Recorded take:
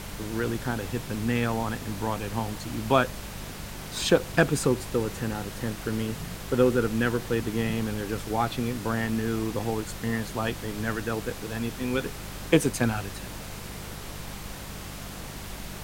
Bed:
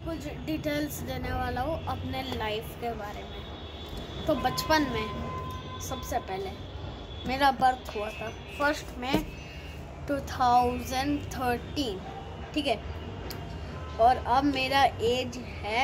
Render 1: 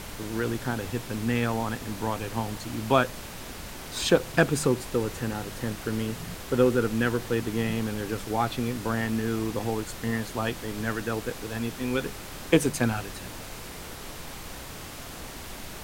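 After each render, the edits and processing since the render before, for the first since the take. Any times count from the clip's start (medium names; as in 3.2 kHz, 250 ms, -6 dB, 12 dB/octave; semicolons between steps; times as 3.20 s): de-hum 50 Hz, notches 4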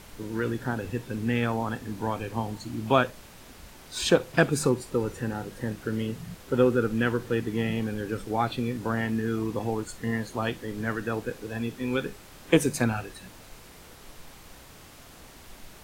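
noise print and reduce 9 dB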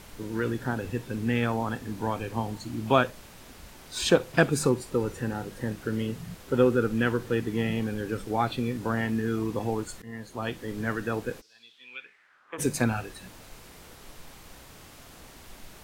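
10.02–10.70 s: fade in, from -17 dB; 11.40–12.58 s: band-pass filter 5.6 kHz -> 1.1 kHz, Q 4.7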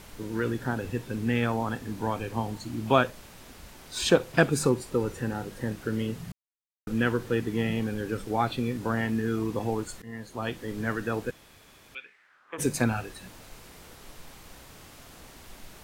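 6.32–6.87 s: mute; 11.31–11.95 s: room tone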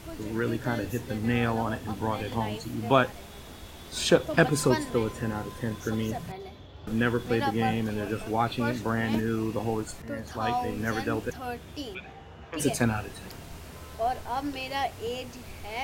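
add bed -7 dB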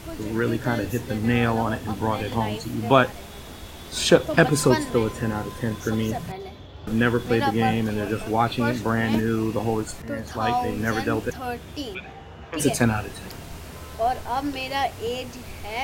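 trim +5 dB; peak limiter -2 dBFS, peak gain reduction 1.5 dB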